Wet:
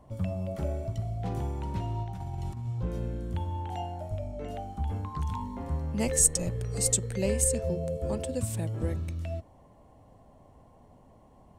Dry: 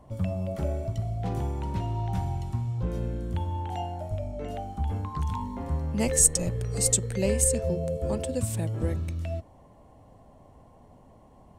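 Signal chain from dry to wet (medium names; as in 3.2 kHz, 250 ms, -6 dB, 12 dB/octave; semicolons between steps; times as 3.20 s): 2.03–2.67 s: compressor with a negative ratio -33 dBFS, ratio -1; trim -2.5 dB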